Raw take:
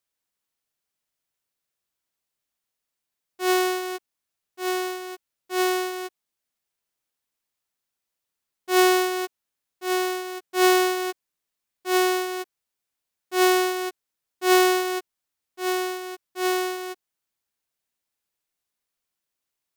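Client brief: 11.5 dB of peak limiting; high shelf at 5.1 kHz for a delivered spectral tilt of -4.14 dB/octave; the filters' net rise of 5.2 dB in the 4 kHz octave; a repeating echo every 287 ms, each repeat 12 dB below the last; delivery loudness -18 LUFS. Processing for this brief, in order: peaking EQ 4 kHz +4.5 dB; treble shelf 5.1 kHz +5 dB; peak limiter -14.5 dBFS; feedback delay 287 ms, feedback 25%, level -12 dB; trim +10 dB

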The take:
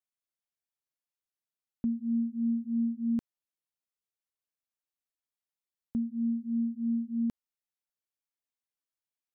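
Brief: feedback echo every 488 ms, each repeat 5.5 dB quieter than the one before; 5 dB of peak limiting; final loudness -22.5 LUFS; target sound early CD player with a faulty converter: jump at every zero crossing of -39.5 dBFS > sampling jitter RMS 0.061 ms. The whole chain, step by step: peak limiter -29 dBFS; feedback delay 488 ms, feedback 53%, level -5.5 dB; jump at every zero crossing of -39.5 dBFS; sampling jitter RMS 0.061 ms; trim +13.5 dB

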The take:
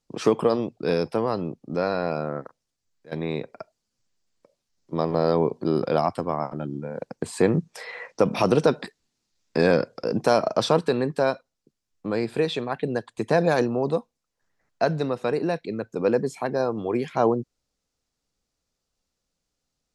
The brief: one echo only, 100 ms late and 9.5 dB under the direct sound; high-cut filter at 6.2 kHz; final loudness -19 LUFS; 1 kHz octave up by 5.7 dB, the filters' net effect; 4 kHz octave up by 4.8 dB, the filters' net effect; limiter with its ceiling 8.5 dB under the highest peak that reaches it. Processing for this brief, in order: low-pass 6.2 kHz; peaking EQ 1 kHz +7.5 dB; peaking EQ 4 kHz +6 dB; peak limiter -11 dBFS; delay 100 ms -9.5 dB; trim +6 dB

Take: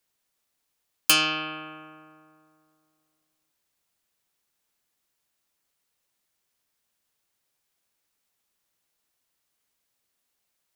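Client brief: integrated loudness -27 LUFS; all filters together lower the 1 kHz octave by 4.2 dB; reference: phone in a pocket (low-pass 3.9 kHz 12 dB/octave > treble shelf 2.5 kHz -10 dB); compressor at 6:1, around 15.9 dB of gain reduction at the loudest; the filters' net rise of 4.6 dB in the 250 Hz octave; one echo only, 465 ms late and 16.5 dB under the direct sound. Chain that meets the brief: peaking EQ 250 Hz +7 dB; peaking EQ 1 kHz -3.5 dB; compression 6:1, threshold -33 dBFS; low-pass 3.9 kHz 12 dB/octave; treble shelf 2.5 kHz -10 dB; delay 465 ms -16.5 dB; trim +16.5 dB

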